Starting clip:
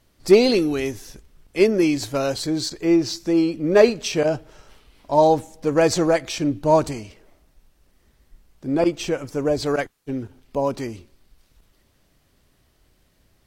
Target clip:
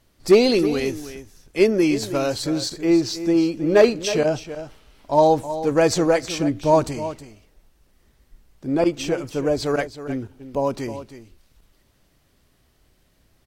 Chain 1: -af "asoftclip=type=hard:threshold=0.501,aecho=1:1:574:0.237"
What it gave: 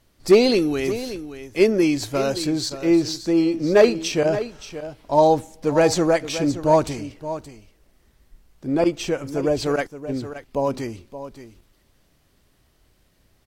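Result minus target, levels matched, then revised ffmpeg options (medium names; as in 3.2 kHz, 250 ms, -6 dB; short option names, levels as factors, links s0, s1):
echo 257 ms late
-af "asoftclip=type=hard:threshold=0.501,aecho=1:1:317:0.237"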